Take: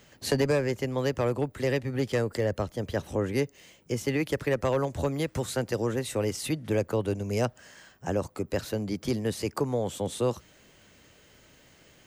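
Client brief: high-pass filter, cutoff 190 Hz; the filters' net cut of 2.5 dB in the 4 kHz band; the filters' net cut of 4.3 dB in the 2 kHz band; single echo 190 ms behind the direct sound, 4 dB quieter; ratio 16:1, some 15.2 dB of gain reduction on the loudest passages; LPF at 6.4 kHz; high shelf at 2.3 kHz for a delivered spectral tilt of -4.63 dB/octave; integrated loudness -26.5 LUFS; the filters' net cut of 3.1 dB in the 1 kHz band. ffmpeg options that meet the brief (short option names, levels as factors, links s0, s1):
-af "highpass=190,lowpass=6400,equalizer=f=1000:t=o:g=-3.5,equalizer=f=2000:t=o:g=-5,highshelf=f=2300:g=3.5,equalizer=f=4000:t=o:g=-4,acompressor=threshold=0.0141:ratio=16,aecho=1:1:190:0.631,volume=5.62"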